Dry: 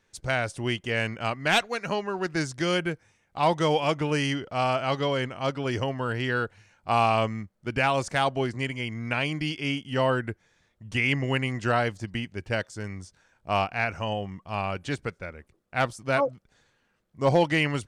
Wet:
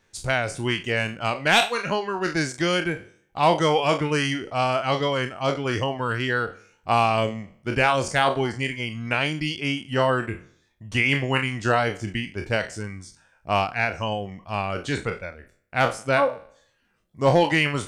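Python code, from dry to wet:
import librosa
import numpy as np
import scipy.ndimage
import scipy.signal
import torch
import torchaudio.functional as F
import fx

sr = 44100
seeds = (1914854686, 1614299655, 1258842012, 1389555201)

y = fx.spec_trails(x, sr, decay_s=0.63)
y = fx.dereverb_blind(y, sr, rt60_s=0.54)
y = F.gain(torch.from_numpy(y), 3.0).numpy()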